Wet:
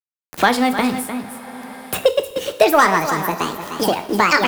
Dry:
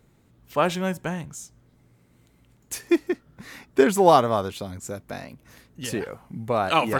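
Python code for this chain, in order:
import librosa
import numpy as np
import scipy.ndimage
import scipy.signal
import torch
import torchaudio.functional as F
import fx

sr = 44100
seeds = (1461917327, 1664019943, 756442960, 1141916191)

p1 = fx.speed_glide(x, sr, from_pct=129, to_pct=184)
p2 = scipy.signal.sosfilt(scipy.signal.butter(4, 50.0, 'highpass', fs=sr, output='sos'), p1)
p3 = fx.low_shelf(p2, sr, hz=71.0, db=5.0)
p4 = fx.leveller(p3, sr, passes=1)
p5 = fx.quant_dither(p4, sr, seeds[0], bits=8, dither='none')
p6 = p5 + fx.echo_single(p5, sr, ms=303, db=-14.5, dry=0)
p7 = fx.rev_double_slope(p6, sr, seeds[1], early_s=0.43, late_s=3.0, knee_db=-19, drr_db=8.5)
p8 = fx.band_squash(p7, sr, depth_pct=70)
y = p8 * 10.0 ** (3.5 / 20.0)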